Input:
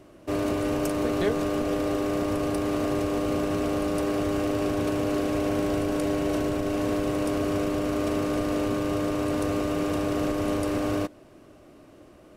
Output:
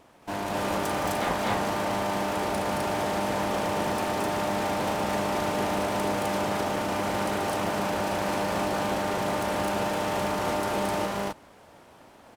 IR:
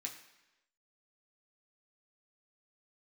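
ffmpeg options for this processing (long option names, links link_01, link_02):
-filter_complex "[0:a]aeval=exprs='abs(val(0))':channel_layout=same,highpass=frequency=140:poles=1,asplit=2[link_01][link_02];[link_02]aecho=0:1:221.6|256.6:0.708|1[link_03];[link_01][link_03]amix=inputs=2:normalize=0"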